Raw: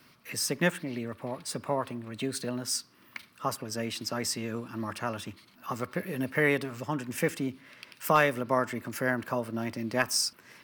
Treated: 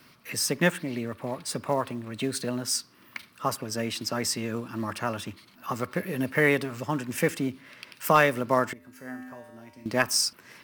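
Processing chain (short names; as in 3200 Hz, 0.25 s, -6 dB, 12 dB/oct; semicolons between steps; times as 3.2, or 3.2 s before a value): in parallel at -7 dB: short-mantissa float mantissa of 2-bit; 8.73–9.86 on the sum: resonator 85 Hz, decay 1.4 s, harmonics odd, mix 90%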